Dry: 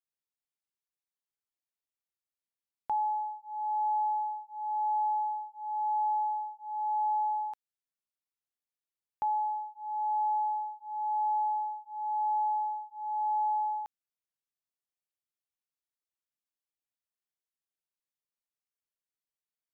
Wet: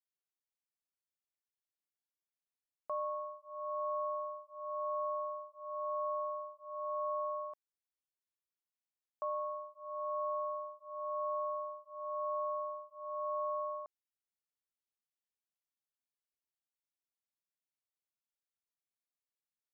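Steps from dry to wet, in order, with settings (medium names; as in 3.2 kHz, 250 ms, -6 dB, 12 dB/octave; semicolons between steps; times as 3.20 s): ring modulator 250 Hz; trim -4.5 dB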